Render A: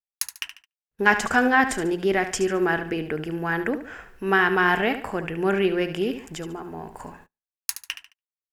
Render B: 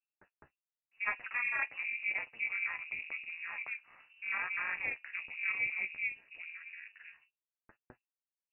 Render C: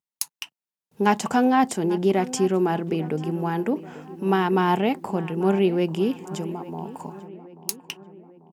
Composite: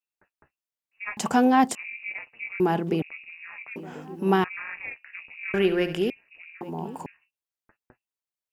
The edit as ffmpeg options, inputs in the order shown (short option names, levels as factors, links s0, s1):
-filter_complex "[2:a]asplit=4[s0][s1][s2][s3];[1:a]asplit=6[s4][s5][s6][s7][s8][s9];[s4]atrim=end=1.172[s10];[s0]atrim=start=1.168:end=1.752[s11];[s5]atrim=start=1.748:end=2.602[s12];[s1]atrim=start=2.598:end=3.022[s13];[s6]atrim=start=3.018:end=3.762[s14];[s2]atrim=start=3.758:end=4.442[s15];[s7]atrim=start=4.438:end=5.542[s16];[0:a]atrim=start=5.538:end=6.102[s17];[s8]atrim=start=6.098:end=6.612[s18];[s3]atrim=start=6.608:end=7.062[s19];[s9]atrim=start=7.058[s20];[s10][s11]acrossfade=d=0.004:c1=hsin:c2=hsin[s21];[s21][s12]acrossfade=d=0.004:c1=hsin:c2=hsin[s22];[s22][s13]acrossfade=d=0.004:c1=hsin:c2=hsin[s23];[s23][s14]acrossfade=d=0.004:c1=hsin:c2=hsin[s24];[s24][s15]acrossfade=d=0.004:c1=hsin:c2=hsin[s25];[s25][s16]acrossfade=d=0.004:c1=hsin:c2=hsin[s26];[s26][s17]acrossfade=d=0.004:c1=hsin:c2=hsin[s27];[s27][s18]acrossfade=d=0.004:c1=hsin:c2=hsin[s28];[s28][s19]acrossfade=d=0.004:c1=hsin:c2=hsin[s29];[s29][s20]acrossfade=d=0.004:c1=hsin:c2=hsin"